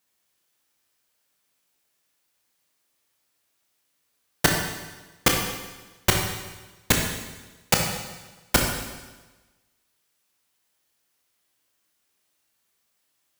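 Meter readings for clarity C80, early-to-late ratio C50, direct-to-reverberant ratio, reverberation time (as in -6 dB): 5.0 dB, 3.0 dB, 0.5 dB, 1.2 s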